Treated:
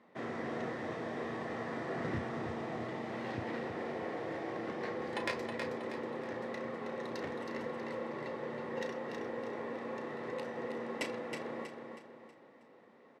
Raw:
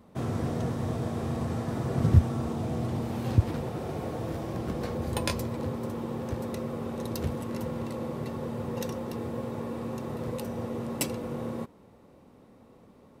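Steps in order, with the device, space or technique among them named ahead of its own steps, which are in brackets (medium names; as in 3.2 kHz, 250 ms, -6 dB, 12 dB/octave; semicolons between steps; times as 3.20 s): intercom (band-pass 310–4200 Hz; peaking EQ 1.9 kHz +12 dB 0.35 oct; saturation -19.5 dBFS, distortion -25 dB; doubling 34 ms -9.5 dB); feedback delay 320 ms, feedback 41%, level -6 dB; trim -4.5 dB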